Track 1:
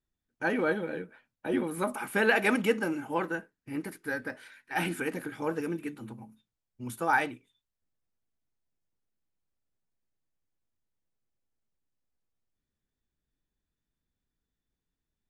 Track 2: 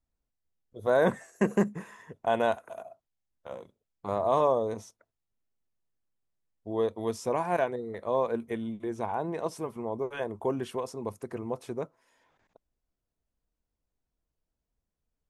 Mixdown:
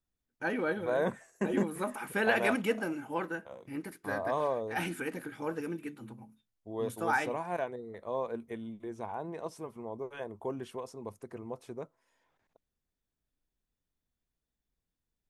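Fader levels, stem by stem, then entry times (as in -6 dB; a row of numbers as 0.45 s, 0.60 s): -4.0 dB, -7.0 dB; 0.00 s, 0.00 s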